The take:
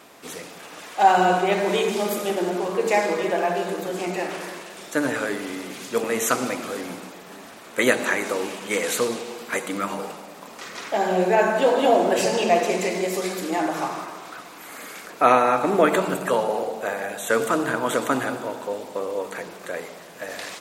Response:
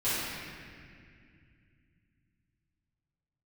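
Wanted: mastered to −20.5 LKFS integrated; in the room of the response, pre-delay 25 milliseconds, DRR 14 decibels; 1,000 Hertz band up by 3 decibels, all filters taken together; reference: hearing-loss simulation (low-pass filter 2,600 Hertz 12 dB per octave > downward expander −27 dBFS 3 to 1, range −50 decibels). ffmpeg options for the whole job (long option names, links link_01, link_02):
-filter_complex "[0:a]equalizer=frequency=1000:width_type=o:gain=4.5,asplit=2[link_01][link_02];[1:a]atrim=start_sample=2205,adelay=25[link_03];[link_02][link_03]afir=irnorm=-1:irlink=0,volume=-25dB[link_04];[link_01][link_04]amix=inputs=2:normalize=0,lowpass=2600,agate=range=-50dB:threshold=-27dB:ratio=3,volume=1dB"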